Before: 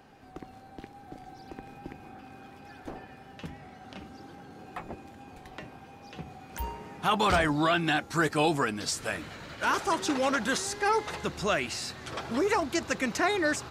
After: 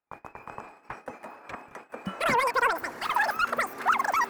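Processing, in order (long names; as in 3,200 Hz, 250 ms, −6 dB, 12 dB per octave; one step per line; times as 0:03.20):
in parallel at −5 dB: wave folding −22 dBFS
on the sum: change of speed 3.19×
noise gate −42 dBFS, range −38 dB
high shelf with overshoot 2,400 Hz −13 dB, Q 1.5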